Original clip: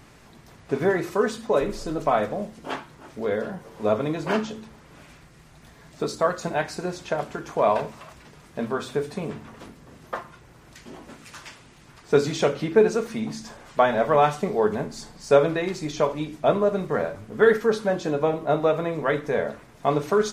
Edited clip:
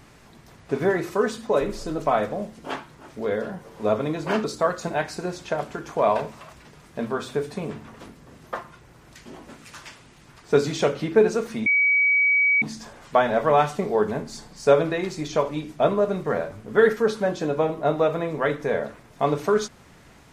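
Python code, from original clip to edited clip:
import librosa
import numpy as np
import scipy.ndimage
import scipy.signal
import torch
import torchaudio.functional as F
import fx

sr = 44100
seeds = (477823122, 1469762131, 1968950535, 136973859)

y = fx.edit(x, sr, fx.cut(start_s=4.44, length_s=1.6),
    fx.insert_tone(at_s=13.26, length_s=0.96, hz=2270.0, db=-16.0), tone=tone)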